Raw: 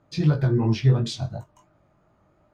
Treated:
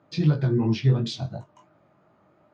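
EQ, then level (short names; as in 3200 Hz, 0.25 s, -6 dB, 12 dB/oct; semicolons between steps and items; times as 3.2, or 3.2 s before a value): BPF 150–4600 Hz; dynamic EQ 1500 Hz, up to -5 dB, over -46 dBFS, Q 0.78; dynamic EQ 590 Hz, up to -5 dB, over -39 dBFS, Q 0.82; +3.0 dB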